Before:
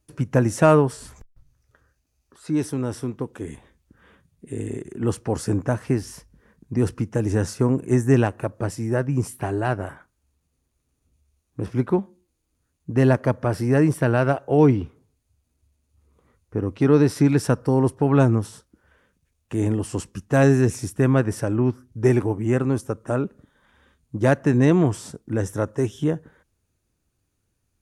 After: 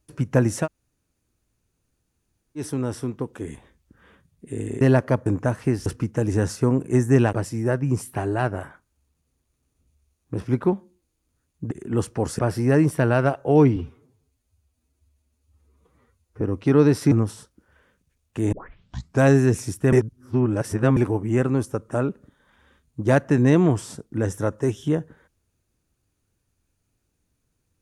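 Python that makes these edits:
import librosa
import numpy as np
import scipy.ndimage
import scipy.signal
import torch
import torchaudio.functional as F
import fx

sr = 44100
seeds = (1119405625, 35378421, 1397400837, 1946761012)

y = fx.edit(x, sr, fx.room_tone_fill(start_s=0.63, length_s=1.97, crossfade_s=0.1),
    fx.swap(start_s=4.81, length_s=0.68, other_s=12.97, other_length_s=0.45),
    fx.cut(start_s=6.09, length_s=0.75),
    fx.cut(start_s=8.31, length_s=0.28),
    fx.stretch_span(start_s=14.79, length_s=1.77, factor=1.5),
    fx.cut(start_s=17.26, length_s=1.01),
    fx.tape_start(start_s=19.68, length_s=0.7),
    fx.reverse_span(start_s=21.08, length_s=1.04), tone=tone)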